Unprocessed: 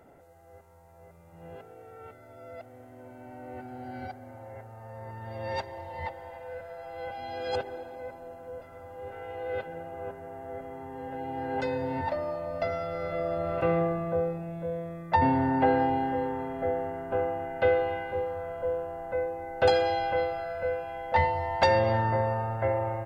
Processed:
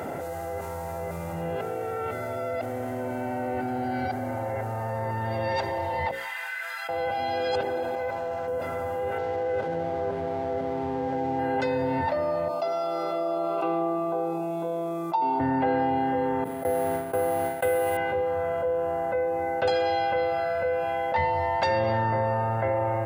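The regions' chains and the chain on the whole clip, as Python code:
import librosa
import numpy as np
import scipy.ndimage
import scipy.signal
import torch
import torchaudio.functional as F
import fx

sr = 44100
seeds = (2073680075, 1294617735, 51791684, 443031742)

y = fx.chain(x, sr, fx.highpass(hz=1400.0, slope=24),
    fx.detune_double(cents=12), at=(6.11, 6.89))
y = fx.chain(y, sr, fx.peak_eq(hz=260.0, db=-9.0, octaves=1.7),
    fx.resample_linear(factor=3), at=(7.95, 8.48))
y = fx.chain(y, sr, fx.lowpass(hz=1200.0, slope=6),
    fx.backlash(play_db=-50.5), at=(9.18, 11.39))
y = fx.chain(y, sr, fx.highpass(hz=260.0, slope=24),
    fx.fixed_phaser(hz=360.0, stages=8), at=(12.48, 15.4))
y = fx.chain(y, sr, fx.law_mismatch(coded='mu'),
    fx.gate_hold(open_db=-21.0, close_db=-29.0, hold_ms=71.0, range_db=-21, attack_ms=1.4, release_ms=100.0),
    fx.resample_bad(factor=4, down='filtered', up='hold'), at=(16.44, 17.97))
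y = scipy.signal.sosfilt(scipy.signal.butter(2, 95.0, 'highpass', fs=sr, output='sos'), y)
y = fx.hum_notches(y, sr, base_hz=60, count=9)
y = fx.env_flatten(y, sr, amount_pct=70)
y = y * librosa.db_to_amplitude(-3.5)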